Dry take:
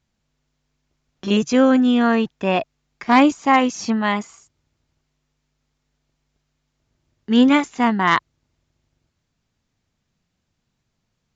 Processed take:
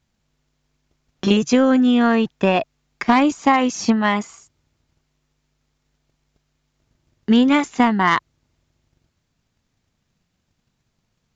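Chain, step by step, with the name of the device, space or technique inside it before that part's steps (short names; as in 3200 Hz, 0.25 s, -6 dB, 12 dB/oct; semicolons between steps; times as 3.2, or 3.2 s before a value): drum-bus smash (transient shaper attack +7 dB, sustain +1 dB; compressor 6:1, threshold -12 dBFS, peak gain reduction 7 dB; soft clip -5 dBFS, distortion -25 dB); gain +2 dB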